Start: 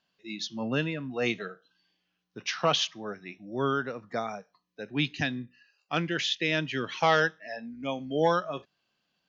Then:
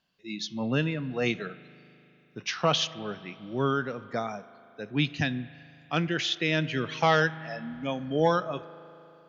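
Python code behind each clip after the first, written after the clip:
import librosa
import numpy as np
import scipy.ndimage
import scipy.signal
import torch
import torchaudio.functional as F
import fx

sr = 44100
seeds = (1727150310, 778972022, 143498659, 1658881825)

y = fx.low_shelf(x, sr, hz=150.0, db=8.5)
y = fx.rev_spring(y, sr, rt60_s=3.2, pass_ms=(38,), chirp_ms=40, drr_db=16.5)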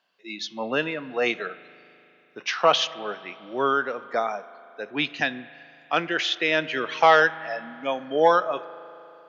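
y = scipy.signal.sosfilt(scipy.signal.butter(2, 520.0, 'highpass', fs=sr, output='sos'), x)
y = fx.high_shelf(y, sr, hz=3300.0, db=-11.0)
y = y * librosa.db_to_amplitude(9.0)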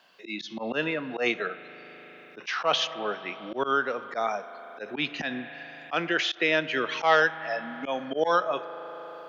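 y = fx.auto_swell(x, sr, attack_ms=108.0)
y = fx.band_squash(y, sr, depth_pct=40)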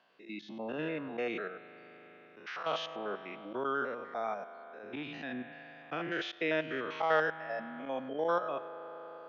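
y = fx.spec_steps(x, sr, hold_ms=100)
y = fx.lowpass(y, sr, hz=1800.0, slope=6)
y = y * librosa.db_to_amplitude(-4.5)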